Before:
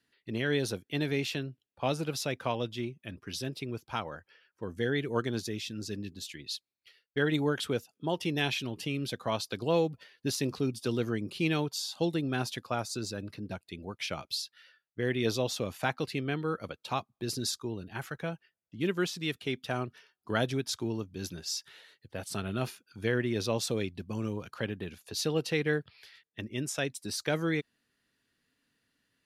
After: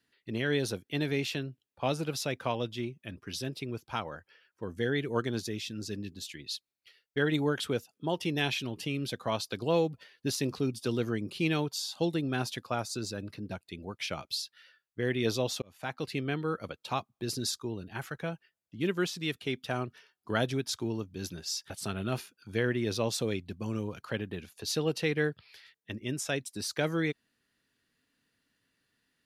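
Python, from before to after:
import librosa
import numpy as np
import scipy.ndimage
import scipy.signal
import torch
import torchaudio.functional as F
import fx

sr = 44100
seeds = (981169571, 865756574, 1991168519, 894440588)

y = fx.edit(x, sr, fx.fade_in_span(start_s=15.62, length_s=0.53),
    fx.cut(start_s=21.7, length_s=0.49), tone=tone)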